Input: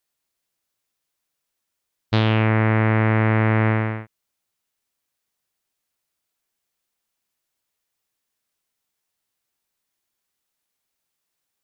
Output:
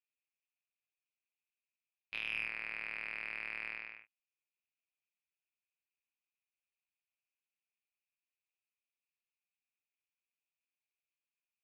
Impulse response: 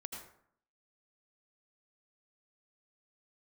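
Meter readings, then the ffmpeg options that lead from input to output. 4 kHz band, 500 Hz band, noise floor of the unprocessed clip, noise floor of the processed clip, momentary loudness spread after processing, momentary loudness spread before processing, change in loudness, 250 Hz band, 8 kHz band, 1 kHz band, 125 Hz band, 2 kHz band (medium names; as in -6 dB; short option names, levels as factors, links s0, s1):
-15.0 dB, -35.0 dB, -80 dBFS, under -85 dBFS, 9 LU, 6 LU, -20.5 dB, under -40 dB, no reading, -29.0 dB, under -40 dB, -13.5 dB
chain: -af "bandpass=f=2500:t=q:w=12:csg=0,tremolo=f=180:d=0.71,aeval=exprs='0.0596*(cos(1*acos(clip(val(0)/0.0596,-1,1)))-cos(1*PI/2))+0.00168*(cos(6*acos(clip(val(0)/0.0596,-1,1)))-cos(6*PI/2))':c=same,volume=1.19"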